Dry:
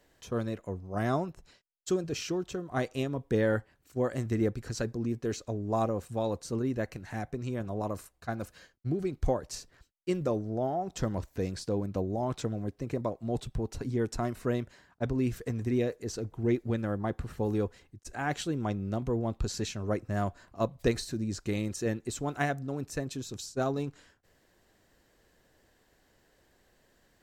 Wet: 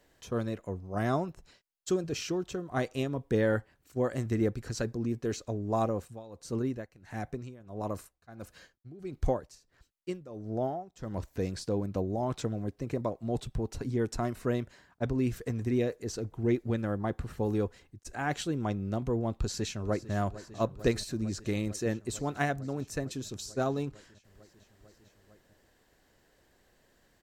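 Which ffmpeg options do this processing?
-filter_complex "[0:a]asettb=1/sr,asplit=3[a][b][c];[a]atrim=end=5.934[d];[b]atrim=start=5.93:end=11.34,asetpts=PTS-STARTPTS,afade=t=in:d=0.004:c=qsin,afade=t=out:st=5.406:d=0.004:c=qsin,tremolo=f=1.5:d=0.88[e];[c]atrim=start=11.336[f];[d][e]acrossfade=d=0.004:c1=hsin:c2=qsin[g];[g][f]acrossfade=d=0.004:c1=qsin:c2=hsin,asplit=2[h][i];[i]afade=t=in:st=19.39:d=0.01,afade=t=out:st=20.13:d=0.01,aecho=0:1:450|900|1350|1800|2250|2700|3150|3600|4050|4500|4950|5400:0.16788|0.142698|0.121294|0.1031|0.0876346|0.0744894|0.063316|0.0538186|0.0457458|0.0388839|0.0330514|0.0280937[j];[h][j]amix=inputs=2:normalize=0"

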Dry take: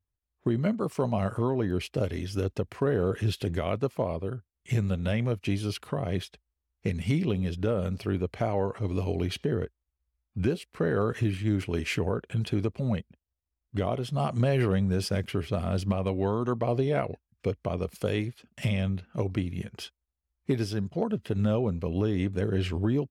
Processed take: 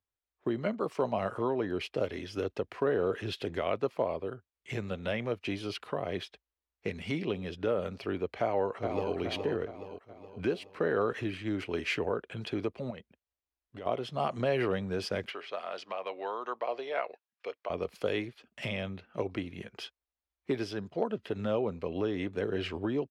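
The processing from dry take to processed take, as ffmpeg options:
-filter_complex "[0:a]asplit=2[a][b];[b]afade=t=in:st=8.4:d=0.01,afade=t=out:st=9.14:d=0.01,aecho=0:1:420|840|1260|1680|2100|2520:0.530884|0.265442|0.132721|0.0663606|0.0331803|0.0165901[c];[a][c]amix=inputs=2:normalize=0,asettb=1/sr,asplit=3[d][e][f];[d]atrim=end=12.904[g];[e]atrim=start=12.9:end=13.86,asetpts=PTS-STARTPTS,afade=t=in:d=0.004:c=qsin,afade=t=out:st=0.956:d=0.004:c=qsin,acompressor=threshold=-33dB:ratio=6:attack=3.2:release=140:knee=1:detection=peak[h];[f]atrim=start=13.856[i];[g][h]acrossfade=d=0.004:c1=hsin:c2=qsin[j];[j][i]acrossfade=d=0.004:c1=qsin:c2=hsin,asettb=1/sr,asplit=3[k][l][m];[k]atrim=end=15.304[n];[l]atrim=start=15.3:end=17.7,asetpts=PTS-STARTPTS,afade=t=in:d=0.004:c=qsin,afade=t=out:st=2.396:d=0.004:c=qsin,highpass=670,lowpass=6.4k[o];[m]atrim=start=17.696[p];[n][o]acrossfade=d=0.004:c1=hsin:c2=qsin[q];[q][p]acrossfade=d=0.004:c1=qsin:c2=hsin,acrossover=split=290 5000:gain=0.2 1 0.224[r][s][t];[r][s][t]amix=inputs=3:normalize=0"

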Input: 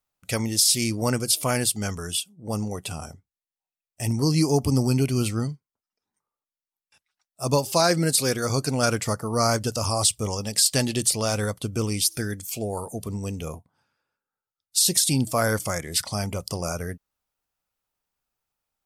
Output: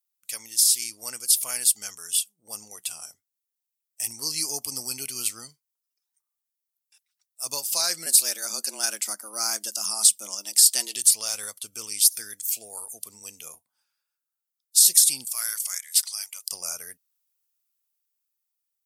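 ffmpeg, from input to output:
-filter_complex "[0:a]asettb=1/sr,asplit=3[a][b][c];[a]atrim=end=8.064[d];[b]atrim=start=8.06:end=10.96,asetpts=PTS-STARTPTS,afade=t=in:d=0.004:c=qsin,afade=t=out:st=2.896:d=0.004:c=qsin,afreqshift=100[e];[c]atrim=start=10.956[f];[d][e]acrossfade=d=0.004:c1=hsin:c2=qsin[g];[g][f]acrossfade=d=0.004:c1=qsin:c2=hsin,asettb=1/sr,asplit=3[h][i][j];[h]atrim=end=15.314[k];[i]atrim=start=15.31:end=16.47,asetpts=PTS-STARTPTS,afade=t=in:d=0.004:c=qsin,afade=t=out:st=1.156:d=0.004:c=qsin,highpass=1.5k[l];[j]atrim=start=16.466[m];[k][l]acrossfade=d=0.004:c1=hsin:c2=qsin[n];[n][m]acrossfade=d=0.004:c1=qsin:c2=hsin,dynaudnorm=f=300:g=9:m=6.5dB,aderivative"

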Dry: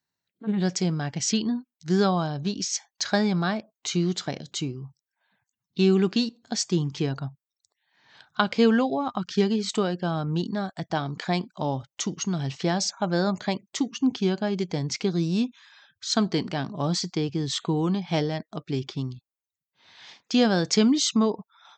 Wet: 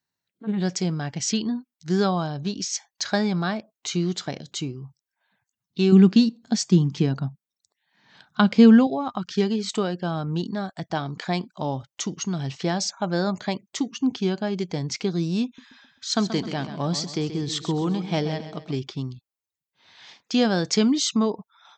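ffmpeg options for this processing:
-filter_complex "[0:a]asettb=1/sr,asplit=3[a][b][c];[a]atrim=end=5.924[d];[b]atrim=start=5.92:end=8.87,asetpts=PTS-STARTPTS,afade=t=in:d=0.004:c=qsin,afade=t=out:st=2.946:d=0.004:c=qsin,equalizer=f=200:w=1.5:g=10.5[e];[c]atrim=start=8.866[f];[d][e]acrossfade=d=0.004:c1=hsin:c2=qsin[g];[g][f]acrossfade=d=0.004:c1=qsin:c2=hsin,asettb=1/sr,asplit=3[h][i][j];[h]atrim=end=15.454[k];[i]atrim=start=15.45:end=18.78,asetpts=PTS-STARTPTS,afade=t=in:d=0.004:c=qsin,afade=t=out:st=3.326:d=0.004:c=qsin,aecho=1:1:131|262|393|524:0.282|0.121|0.0521|0.0224,atrim=end_sample=146853[l];[j]atrim=start=18.776[m];[k][l]acrossfade=d=0.004:c1=hsin:c2=qsin[n];[n][m]acrossfade=d=0.004:c1=qsin:c2=hsin"

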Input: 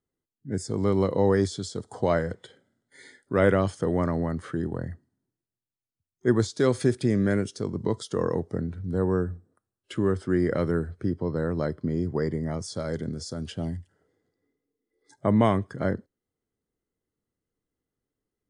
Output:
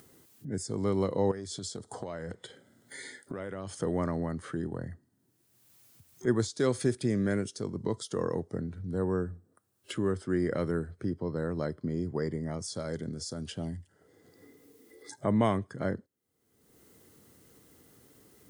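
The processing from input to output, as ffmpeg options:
-filter_complex "[0:a]asettb=1/sr,asplit=3[a][b][c];[a]atrim=end=1.314[d];[b]atrim=start=1.31:end=3.75,asetpts=PTS-STARTPTS,afade=t=in:d=0.004:c=qsin,afade=t=out:st=2.436:d=0.004:c=qsin,acompressor=threshold=-29dB:ratio=10:attack=3.2:release=140:knee=1:detection=peak[e];[c]atrim=start=3.746[f];[d][e]acrossfade=d=0.004:c1=hsin:c2=qsin[g];[g][f]acrossfade=d=0.004:c1=qsin:c2=hsin,highpass=77,highshelf=f=7.2k:g=8.5,acompressor=mode=upward:threshold=-29dB:ratio=2.5,volume=-5dB"

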